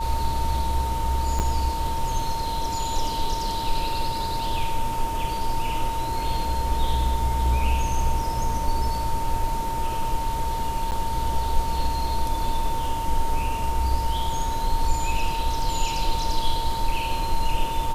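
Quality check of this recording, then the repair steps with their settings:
whine 910 Hz -27 dBFS
1.39–1.40 s: dropout 8.9 ms
10.91–10.92 s: dropout 9.2 ms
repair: band-stop 910 Hz, Q 30; interpolate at 1.39 s, 8.9 ms; interpolate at 10.91 s, 9.2 ms

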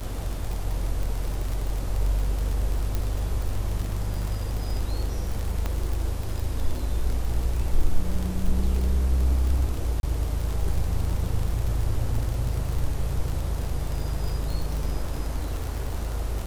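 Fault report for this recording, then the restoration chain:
crackle 49 per s -27 dBFS
2.95 s: pop
5.66 s: pop -14 dBFS
10.00–10.03 s: dropout 31 ms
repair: de-click; interpolate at 10.00 s, 31 ms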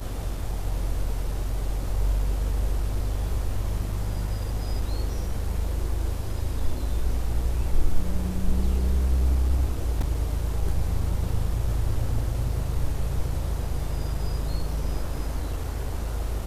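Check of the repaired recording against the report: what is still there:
5.66 s: pop

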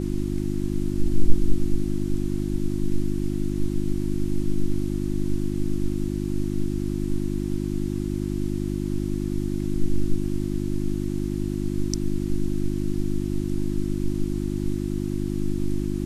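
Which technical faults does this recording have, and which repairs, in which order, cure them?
hum 50 Hz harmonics 7 -27 dBFS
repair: de-hum 50 Hz, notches 7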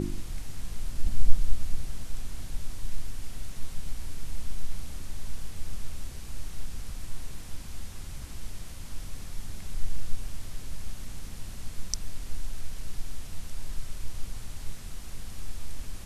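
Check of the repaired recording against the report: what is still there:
nothing left

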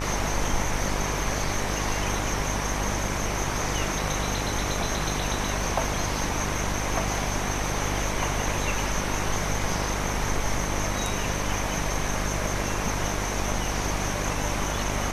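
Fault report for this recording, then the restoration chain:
buzz 50 Hz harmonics 37 -31 dBFS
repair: de-hum 50 Hz, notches 37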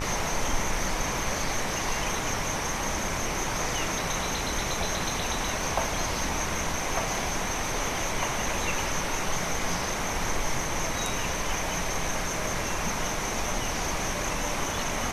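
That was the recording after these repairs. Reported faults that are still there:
nothing left

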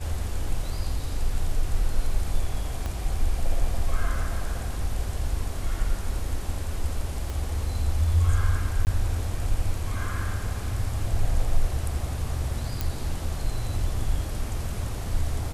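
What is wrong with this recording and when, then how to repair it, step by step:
2.86 s: pop -18 dBFS
7.30 s: pop
8.85–8.87 s: dropout 19 ms
12.81 s: pop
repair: de-click; interpolate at 8.85 s, 19 ms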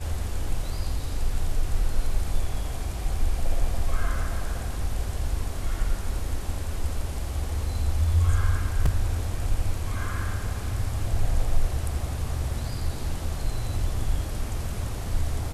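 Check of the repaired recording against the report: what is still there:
2.86 s: pop
7.30 s: pop

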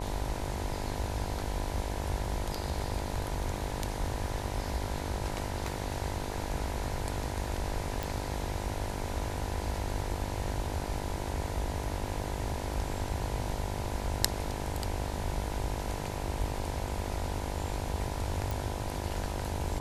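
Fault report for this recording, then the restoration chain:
buzz 50 Hz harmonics 20 -39 dBFS
8.03 s: pop
18.51 s: pop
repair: de-click; de-hum 50 Hz, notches 20

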